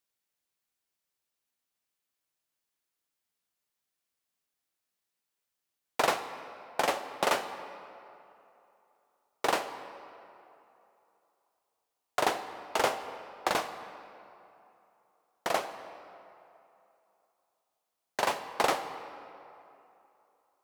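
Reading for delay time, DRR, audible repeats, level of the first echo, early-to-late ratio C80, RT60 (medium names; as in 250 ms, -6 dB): no echo, 9.5 dB, no echo, no echo, 11.5 dB, 2.9 s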